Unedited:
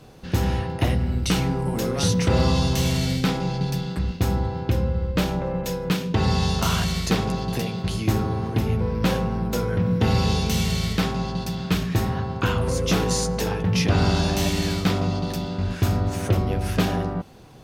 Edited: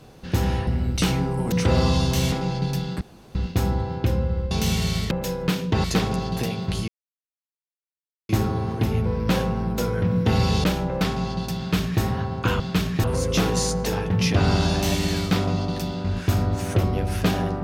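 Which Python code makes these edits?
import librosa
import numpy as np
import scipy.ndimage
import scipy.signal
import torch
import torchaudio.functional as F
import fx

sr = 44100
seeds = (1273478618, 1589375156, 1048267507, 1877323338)

y = fx.edit(x, sr, fx.cut(start_s=0.67, length_s=0.28),
    fx.cut(start_s=1.8, length_s=0.34),
    fx.cut(start_s=2.94, length_s=0.37),
    fx.insert_room_tone(at_s=4.0, length_s=0.34),
    fx.swap(start_s=5.16, length_s=0.37, other_s=10.39, other_length_s=0.6),
    fx.cut(start_s=6.26, length_s=0.74),
    fx.insert_silence(at_s=8.04, length_s=1.41),
    fx.duplicate(start_s=11.56, length_s=0.44, to_s=12.58), tone=tone)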